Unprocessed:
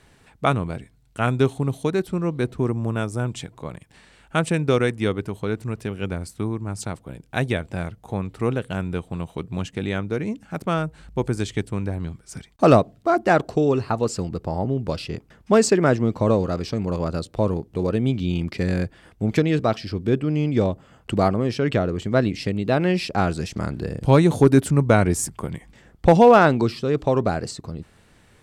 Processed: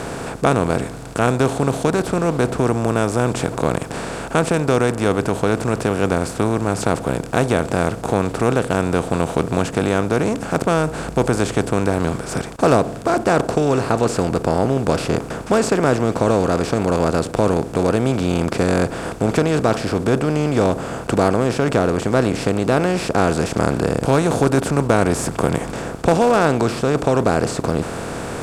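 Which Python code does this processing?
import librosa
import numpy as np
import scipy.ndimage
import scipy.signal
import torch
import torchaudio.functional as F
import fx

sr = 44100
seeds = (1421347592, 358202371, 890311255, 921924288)

p1 = fx.bin_compress(x, sr, power=0.4)
p2 = fx.rider(p1, sr, range_db=4, speed_s=0.5)
p3 = p1 + (p2 * librosa.db_to_amplitude(-2.0))
y = p3 * librosa.db_to_amplitude(-9.5)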